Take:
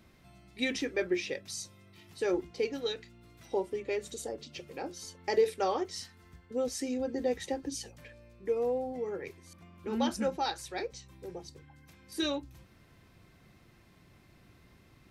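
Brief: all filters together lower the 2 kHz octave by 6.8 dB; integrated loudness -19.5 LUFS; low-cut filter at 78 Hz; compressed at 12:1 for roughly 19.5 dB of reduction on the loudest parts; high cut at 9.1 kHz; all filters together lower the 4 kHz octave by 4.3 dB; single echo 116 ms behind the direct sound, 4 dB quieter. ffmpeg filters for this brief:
-af "highpass=78,lowpass=9100,equalizer=f=2000:t=o:g=-7.5,equalizer=f=4000:t=o:g=-3,acompressor=threshold=0.00891:ratio=12,aecho=1:1:116:0.631,volume=20"

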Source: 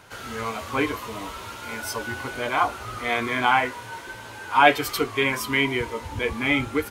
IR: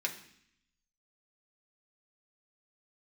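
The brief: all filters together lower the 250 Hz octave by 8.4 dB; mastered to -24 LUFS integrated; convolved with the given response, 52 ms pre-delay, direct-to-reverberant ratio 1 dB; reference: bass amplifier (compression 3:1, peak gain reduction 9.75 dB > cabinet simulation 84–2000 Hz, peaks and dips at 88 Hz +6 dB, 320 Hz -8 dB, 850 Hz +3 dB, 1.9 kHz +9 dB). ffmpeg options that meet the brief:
-filter_complex "[0:a]equalizer=f=250:t=o:g=-6,asplit=2[s0][s1];[1:a]atrim=start_sample=2205,adelay=52[s2];[s1][s2]afir=irnorm=-1:irlink=0,volume=0.562[s3];[s0][s3]amix=inputs=2:normalize=0,acompressor=threshold=0.0794:ratio=3,highpass=f=84:w=0.5412,highpass=f=84:w=1.3066,equalizer=f=88:t=q:w=4:g=6,equalizer=f=320:t=q:w=4:g=-8,equalizer=f=850:t=q:w=4:g=3,equalizer=f=1900:t=q:w=4:g=9,lowpass=f=2000:w=0.5412,lowpass=f=2000:w=1.3066,volume=1.26"

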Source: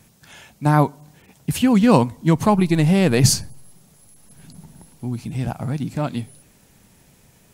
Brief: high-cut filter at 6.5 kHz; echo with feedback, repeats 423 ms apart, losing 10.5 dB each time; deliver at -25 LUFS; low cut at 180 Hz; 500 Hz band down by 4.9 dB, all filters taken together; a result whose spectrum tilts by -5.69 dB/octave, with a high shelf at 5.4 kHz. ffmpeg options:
-af "highpass=180,lowpass=6500,equalizer=f=500:t=o:g=-6,highshelf=f=5400:g=-4.5,aecho=1:1:423|846|1269:0.299|0.0896|0.0269,volume=0.75"

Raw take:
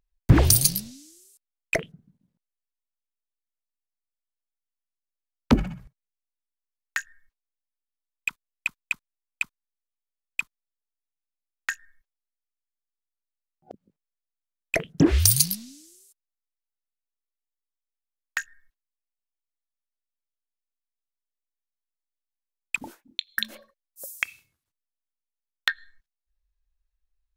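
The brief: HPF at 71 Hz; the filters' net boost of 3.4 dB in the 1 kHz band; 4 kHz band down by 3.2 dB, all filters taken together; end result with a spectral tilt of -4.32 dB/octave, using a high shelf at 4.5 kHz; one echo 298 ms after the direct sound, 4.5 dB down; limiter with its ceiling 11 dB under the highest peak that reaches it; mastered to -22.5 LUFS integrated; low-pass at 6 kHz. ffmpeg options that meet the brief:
-af "highpass=71,lowpass=6000,equalizer=f=1000:t=o:g=4.5,equalizer=f=4000:t=o:g=-5,highshelf=f=4500:g=3.5,alimiter=limit=0.2:level=0:latency=1,aecho=1:1:298:0.596,volume=2.82"

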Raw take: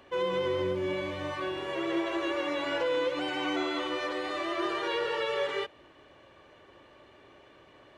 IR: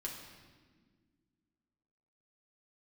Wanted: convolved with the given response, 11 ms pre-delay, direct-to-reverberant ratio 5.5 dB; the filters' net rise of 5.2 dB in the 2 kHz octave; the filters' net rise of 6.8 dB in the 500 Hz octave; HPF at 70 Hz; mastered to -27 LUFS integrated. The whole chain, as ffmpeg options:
-filter_complex "[0:a]highpass=70,equalizer=f=500:t=o:g=7.5,equalizer=f=2000:t=o:g=6,asplit=2[s0][s1];[1:a]atrim=start_sample=2205,adelay=11[s2];[s1][s2]afir=irnorm=-1:irlink=0,volume=0.562[s3];[s0][s3]amix=inputs=2:normalize=0,volume=0.841"

